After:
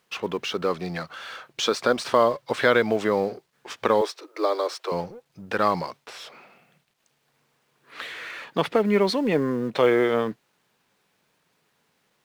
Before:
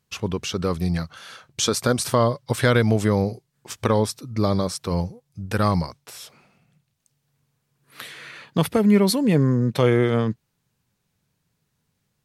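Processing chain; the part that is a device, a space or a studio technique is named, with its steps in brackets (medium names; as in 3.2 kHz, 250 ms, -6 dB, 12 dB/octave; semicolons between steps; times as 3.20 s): phone line with mismatched companding (band-pass 360–3400 Hz; companding laws mixed up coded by mu); 4.01–4.92 s: steep high-pass 310 Hz 96 dB/octave; trim +1.5 dB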